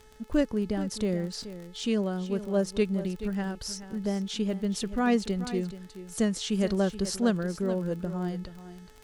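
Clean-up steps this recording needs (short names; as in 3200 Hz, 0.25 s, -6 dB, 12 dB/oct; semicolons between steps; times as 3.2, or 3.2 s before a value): de-click; de-hum 431.9 Hz, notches 36; inverse comb 0.428 s -13 dB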